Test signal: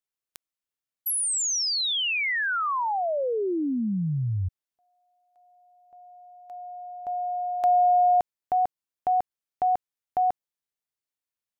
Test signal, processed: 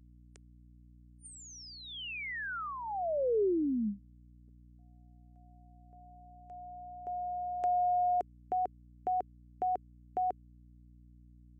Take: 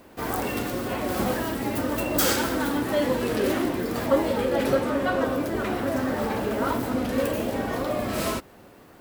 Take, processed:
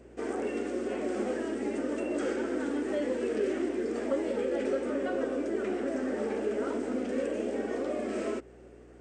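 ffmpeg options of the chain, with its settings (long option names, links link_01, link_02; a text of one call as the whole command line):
ffmpeg -i in.wav -filter_complex "[0:a]equalizer=frequency=400:width_type=o:width=0.67:gain=10,equalizer=frequency=1000:width_type=o:width=0.67:gain=-9,equalizer=frequency=4000:width_type=o:width=0.67:gain=-10,afftfilt=real='re*between(b*sr/4096,200,9000)':imag='im*between(b*sr/4096,200,9000)':win_size=4096:overlap=0.75,acrossover=split=1200|2900[link_01][link_02][link_03];[link_01]acompressor=threshold=-23dB:ratio=2.5[link_04];[link_02]acompressor=threshold=-38dB:ratio=3[link_05];[link_03]acompressor=threshold=-46dB:ratio=10[link_06];[link_04][link_05][link_06]amix=inputs=3:normalize=0,aeval=exprs='val(0)+0.00316*(sin(2*PI*60*n/s)+sin(2*PI*2*60*n/s)/2+sin(2*PI*3*60*n/s)/3+sin(2*PI*4*60*n/s)/4+sin(2*PI*5*60*n/s)/5)':channel_layout=same,volume=-6dB" out.wav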